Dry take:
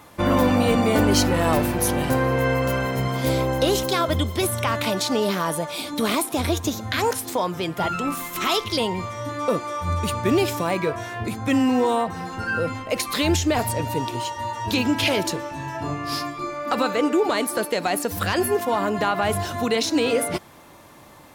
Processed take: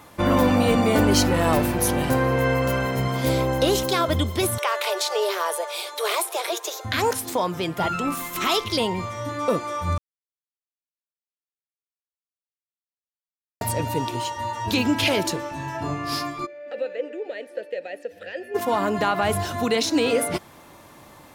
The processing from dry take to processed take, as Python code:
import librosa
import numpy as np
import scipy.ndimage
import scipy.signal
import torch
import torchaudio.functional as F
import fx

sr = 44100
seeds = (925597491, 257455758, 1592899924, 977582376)

y = fx.steep_highpass(x, sr, hz=370.0, slope=96, at=(4.58, 6.85))
y = fx.vowel_filter(y, sr, vowel='e', at=(16.45, 18.54), fade=0.02)
y = fx.edit(y, sr, fx.silence(start_s=9.98, length_s=3.63), tone=tone)